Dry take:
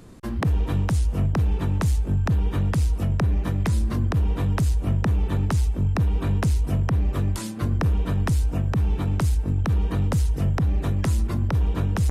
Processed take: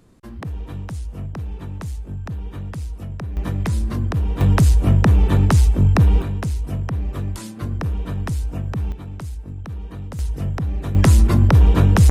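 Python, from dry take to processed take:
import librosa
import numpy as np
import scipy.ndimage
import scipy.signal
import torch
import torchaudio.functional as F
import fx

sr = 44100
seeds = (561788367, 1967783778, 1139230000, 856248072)

y = fx.gain(x, sr, db=fx.steps((0.0, -7.5), (3.37, 1.0), (4.41, 8.0), (6.22, -2.0), (8.92, -9.0), (10.19, -1.5), (10.95, 10.0)))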